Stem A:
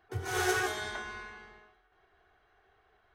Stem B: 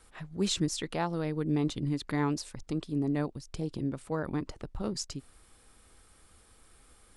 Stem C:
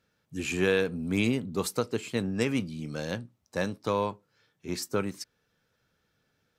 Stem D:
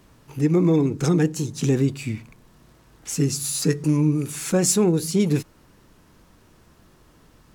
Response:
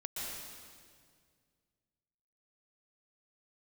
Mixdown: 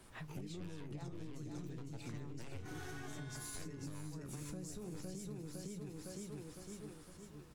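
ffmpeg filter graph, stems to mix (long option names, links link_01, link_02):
-filter_complex "[0:a]adelay=2400,volume=1.5dB[link_01];[1:a]volume=1dB,asplit=2[link_02][link_03];[link_03]volume=-14.5dB[link_04];[2:a]flanger=delay=4.8:depth=7.4:regen=-70:speed=0.59:shape=triangular,aeval=exprs='0.158*(cos(1*acos(clip(val(0)/0.158,-1,1)))-cos(1*PI/2))+0.0224*(cos(7*acos(clip(val(0)/0.158,-1,1)))-cos(7*PI/2))+0.0316*(cos(8*acos(clip(val(0)/0.158,-1,1)))-cos(8*PI/2))':channel_layout=same,volume=1dB,asplit=2[link_05][link_06];[link_06]volume=-18dB[link_07];[3:a]volume=-4dB,asplit=2[link_08][link_09];[link_09]volume=-8.5dB[link_10];[link_02][link_05][link_08]amix=inputs=3:normalize=0,acompressor=threshold=-27dB:ratio=6,volume=0dB[link_11];[link_04][link_07][link_10]amix=inputs=3:normalize=0,aecho=0:1:508|1016|1524|2032|2540|3048:1|0.46|0.212|0.0973|0.0448|0.0206[link_12];[link_01][link_11][link_12]amix=inputs=3:normalize=0,acrossover=split=150[link_13][link_14];[link_14]acompressor=threshold=-36dB:ratio=4[link_15];[link_13][link_15]amix=inputs=2:normalize=0,flanger=delay=8.1:depth=8.7:regen=69:speed=0.31:shape=sinusoidal,acompressor=threshold=-43dB:ratio=6"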